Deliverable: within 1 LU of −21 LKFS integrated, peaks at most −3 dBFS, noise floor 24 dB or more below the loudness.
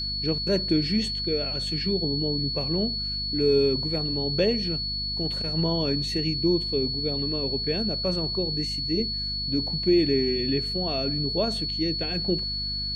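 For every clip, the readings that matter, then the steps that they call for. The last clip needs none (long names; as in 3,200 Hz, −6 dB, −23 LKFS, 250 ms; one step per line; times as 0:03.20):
mains hum 50 Hz; hum harmonics up to 250 Hz; level of the hum −34 dBFS; interfering tone 4,400 Hz; level of the tone −28 dBFS; integrated loudness −25.0 LKFS; sample peak −11.0 dBFS; target loudness −21.0 LKFS
→ mains-hum notches 50/100/150/200/250 Hz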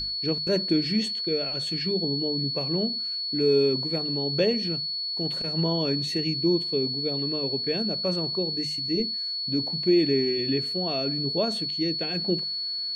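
mains hum none found; interfering tone 4,400 Hz; level of the tone −28 dBFS
→ notch filter 4,400 Hz, Q 30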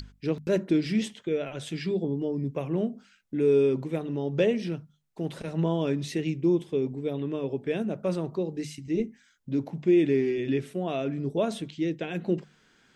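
interfering tone none found; integrated loudness −28.5 LKFS; sample peak −12.0 dBFS; target loudness −21.0 LKFS
→ level +7.5 dB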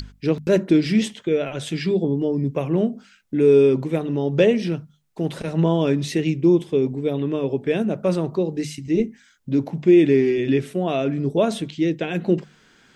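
integrated loudness −21.0 LKFS; sample peak −4.5 dBFS; background noise floor −56 dBFS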